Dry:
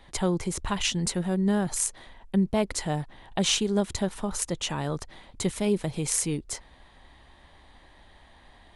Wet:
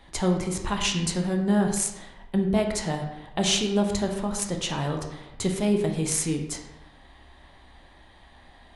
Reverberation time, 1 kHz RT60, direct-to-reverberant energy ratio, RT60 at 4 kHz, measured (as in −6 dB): 0.95 s, 1.0 s, 2.5 dB, 0.65 s